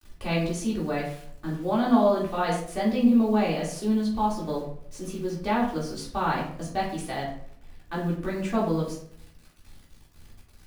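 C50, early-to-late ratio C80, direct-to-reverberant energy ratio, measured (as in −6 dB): 5.5 dB, 9.0 dB, −6.5 dB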